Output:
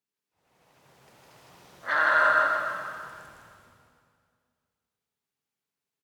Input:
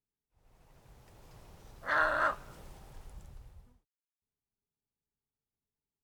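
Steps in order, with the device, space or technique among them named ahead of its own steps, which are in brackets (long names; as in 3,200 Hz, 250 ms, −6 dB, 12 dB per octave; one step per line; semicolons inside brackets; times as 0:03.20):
stadium PA (high-pass filter 180 Hz 12 dB per octave; parametric band 2,400 Hz +5 dB 2.8 octaves; loudspeakers that aren't time-aligned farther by 54 metres −2 dB, 97 metres −11 dB; convolution reverb RT60 2.1 s, pre-delay 62 ms, DRR 2.5 dB)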